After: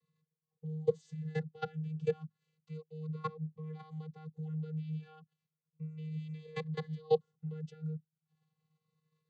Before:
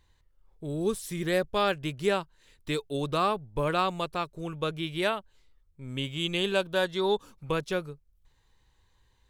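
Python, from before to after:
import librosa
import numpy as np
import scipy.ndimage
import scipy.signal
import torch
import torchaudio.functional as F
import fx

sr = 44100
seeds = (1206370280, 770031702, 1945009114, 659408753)

y = fx.level_steps(x, sr, step_db=24)
y = fx.vocoder(y, sr, bands=16, carrier='square', carrier_hz=156.0)
y = fx.notch_cascade(y, sr, direction='falling', hz=0.33)
y = F.gain(torch.from_numpy(y), 1.5).numpy()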